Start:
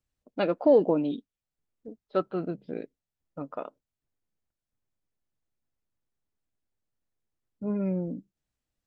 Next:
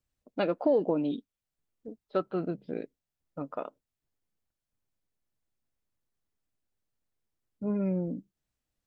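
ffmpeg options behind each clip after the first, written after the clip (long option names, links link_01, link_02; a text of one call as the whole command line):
ffmpeg -i in.wav -af "acompressor=threshold=-25dB:ratio=2" out.wav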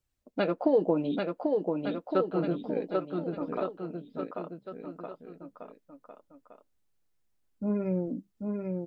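ffmpeg -i in.wav -af "flanger=delay=2:depth=4.5:regen=-53:speed=0.63:shape=triangular,aecho=1:1:790|1462|2032|2517|2930:0.631|0.398|0.251|0.158|0.1,volume=5.5dB" out.wav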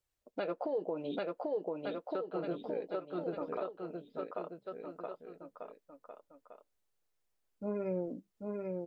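ffmpeg -i in.wav -af "lowshelf=frequency=340:width_type=q:width=1.5:gain=-6,alimiter=level_in=0.5dB:limit=-24dB:level=0:latency=1:release=262,volume=-0.5dB,volume=-2dB" out.wav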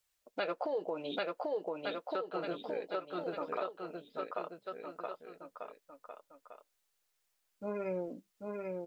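ffmpeg -i in.wav -af "tiltshelf=frequency=680:gain=-7,volume=1.5dB" out.wav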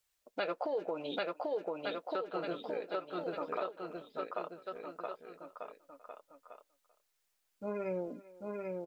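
ffmpeg -i in.wav -filter_complex "[0:a]asplit=2[link_01][link_02];[link_02]adelay=390,highpass=300,lowpass=3400,asoftclip=type=hard:threshold=-29dB,volume=-19dB[link_03];[link_01][link_03]amix=inputs=2:normalize=0" out.wav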